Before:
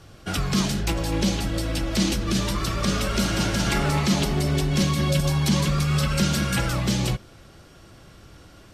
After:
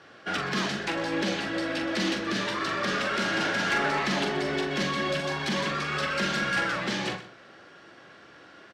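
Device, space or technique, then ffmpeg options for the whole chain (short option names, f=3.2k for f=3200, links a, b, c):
intercom: -filter_complex "[0:a]highpass=310,lowpass=3.9k,equalizer=f=1.7k:t=o:w=0.43:g=8,asoftclip=type=tanh:threshold=-20.5dB,asplit=2[a][b];[b]adelay=43,volume=-7dB[c];[a][c]amix=inputs=2:normalize=0,aecho=1:1:125:0.178"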